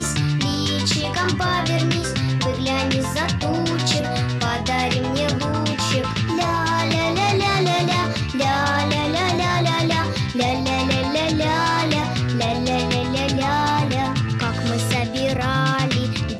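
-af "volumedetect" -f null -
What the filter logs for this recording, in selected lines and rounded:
mean_volume: -20.4 dB
max_volume: -6.7 dB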